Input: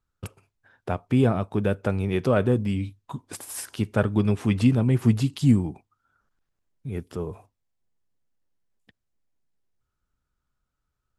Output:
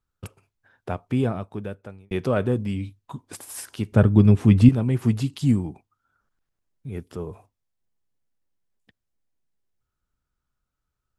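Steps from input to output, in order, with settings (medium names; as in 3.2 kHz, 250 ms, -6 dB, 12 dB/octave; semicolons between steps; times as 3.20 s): 1.05–2.11 s: fade out; 3.92–4.69 s: bass shelf 340 Hz +11.5 dB; trim -1.5 dB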